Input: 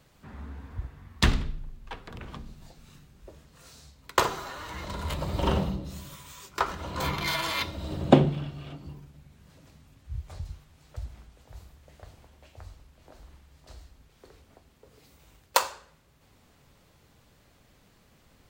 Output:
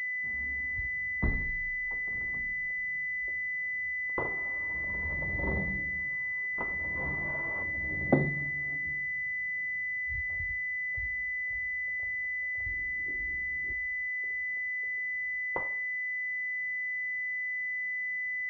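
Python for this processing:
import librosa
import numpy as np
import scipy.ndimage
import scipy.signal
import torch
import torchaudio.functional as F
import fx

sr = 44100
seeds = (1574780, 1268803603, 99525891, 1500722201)

y = fx.low_shelf_res(x, sr, hz=490.0, db=9.5, q=3.0, at=(12.66, 13.73))
y = np.repeat(scipy.signal.resample_poly(y, 1, 8), 8)[:len(y)]
y = fx.pwm(y, sr, carrier_hz=2000.0)
y = y * librosa.db_to_amplitude(-7.5)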